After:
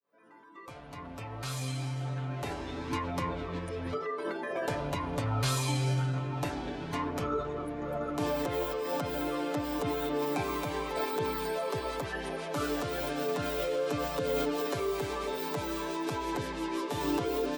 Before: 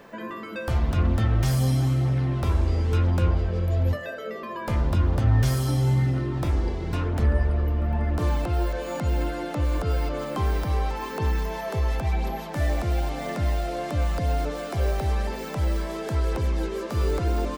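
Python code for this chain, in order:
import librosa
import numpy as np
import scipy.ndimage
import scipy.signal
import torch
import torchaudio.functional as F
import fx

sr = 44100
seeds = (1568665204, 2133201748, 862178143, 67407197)

y = fx.fade_in_head(x, sr, length_s=3.34)
y = fx.highpass(y, sr, hz=570.0, slope=6)
y = y + 0.75 * np.pad(y, (int(7.0 * sr / 1000.0), 0))[:len(y)]
y = fx.formant_shift(y, sr, semitones=-5)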